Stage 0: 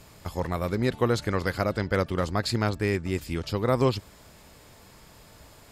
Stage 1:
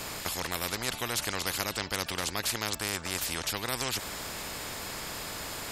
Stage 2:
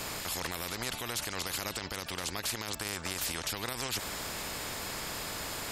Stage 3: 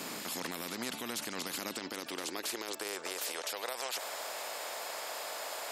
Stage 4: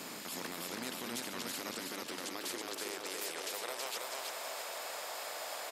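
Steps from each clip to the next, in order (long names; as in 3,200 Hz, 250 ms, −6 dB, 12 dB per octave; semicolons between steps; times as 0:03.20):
every bin compressed towards the loudest bin 4 to 1; level −3 dB
brickwall limiter −22 dBFS, peak gain reduction 10 dB
high-pass filter sweep 230 Hz → 610 Hz, 0:01.53–0:03.89; level −3.5 dB
repeating echo 324 ms, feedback 48%, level −3 dB; level −4 dB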